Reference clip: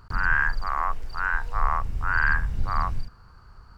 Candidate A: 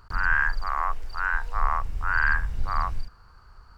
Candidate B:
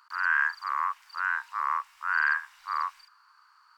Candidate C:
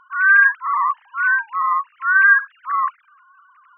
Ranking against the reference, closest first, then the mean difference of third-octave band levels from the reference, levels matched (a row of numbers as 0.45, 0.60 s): A, B, C; 1.5, 9.0, 14.5 dB